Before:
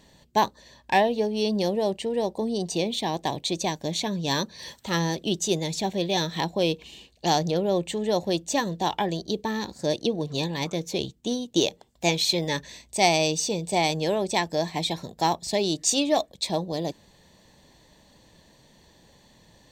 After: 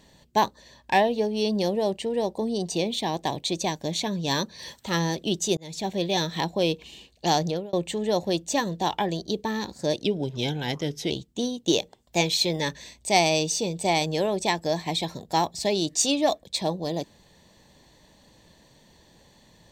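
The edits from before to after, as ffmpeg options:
ffmpeg -i in.wav -filter_complex "[0:a]asplit=5[link_01][link_02][link_03][link_04][link_05];[link_01]atrim=end=5.57,asetpts=PTS-STARTPTS,afade=type=out:start_time=5.566:duration=0.004:curve=hsin[link_06];[link_02]atrim=start=5.57:end=7.73,asetpts=PTS-STARTPTS,afade=type=in:duration=0.49:curve=qsin,afade=type=out:start_time=1.89:duration=0.27[link_07];[link_03]atrim=start=7.73:end=10.034,asetpts=PTS-STARTPTS,afade=type=in:duration=0.004:curve=hsin[link_08];[link_04]atrim=start=10.03:end=10.99,asetpts=PTS-STARTPTS,asetrate=39249,aresample=44100[link_09];[link_05]atrim=start=10.986[link_10];[link_06][link_07][link_08]concat=n=3:v=0:a=1[link_11];[link_11][link_09]acrossfade=duration=0.004:curve1=hsin:curve2=hsin[link_12];[link_12][link_10]acrossfade=duration=0.004:curve1=hsin:curve2=hsin" out.wav

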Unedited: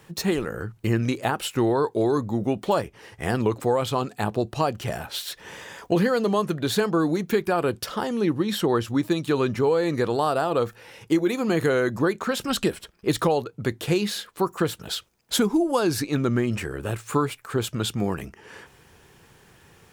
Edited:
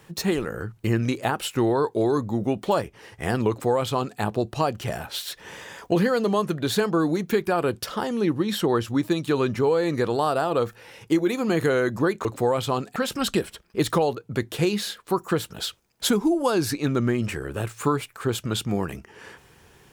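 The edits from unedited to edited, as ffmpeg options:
ffmpeg -i in.wav -filter_complex "[0:a]asplit=3[link_01][link_02][link_03];[link_01]atrim=end=12.252[link_04];[link_02]atrim=start=3.488:end=4.202[link_05];[link_03]atrim=start=12.248[link_06];[link_04][link_05]acrossfade=duration=0.004:curve1=hsin:curve2=hsin[link_07];[link_07][link_06]acrossfade=duration=0.004:curve1=hsin:curve2=hsin" out.wav

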